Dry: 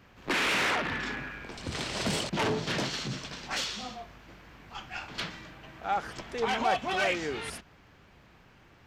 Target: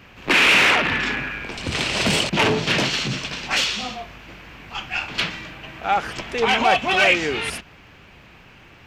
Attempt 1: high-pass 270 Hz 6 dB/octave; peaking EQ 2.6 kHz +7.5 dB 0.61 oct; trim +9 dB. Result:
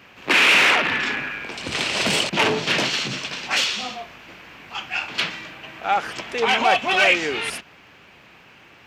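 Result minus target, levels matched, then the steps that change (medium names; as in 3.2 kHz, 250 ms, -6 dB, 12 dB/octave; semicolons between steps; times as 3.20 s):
250 Hz band -3.0 dB
remove: high-pass 270 Hz 6 dB/octave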